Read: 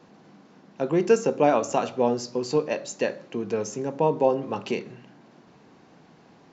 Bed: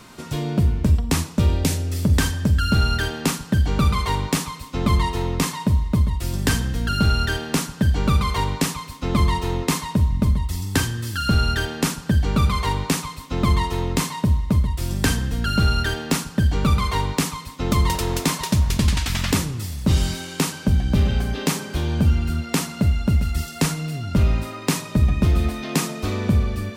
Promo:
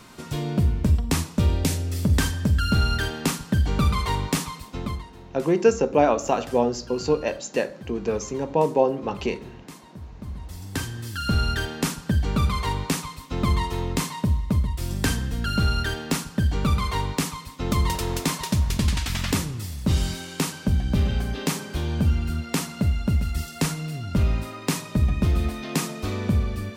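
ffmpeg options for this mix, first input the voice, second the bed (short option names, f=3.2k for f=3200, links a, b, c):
-filter_complex "[0:a]adelay=4550,volume=1.5dB[a];[1:a]volume=15.5dB,afade=t=out:st=4.54:d=0.51:silence=0.112202,afade=t=in:st=10.15:d=1.25:silence=0.125893[b];[a][b]amix=inputs=2:normalize=0"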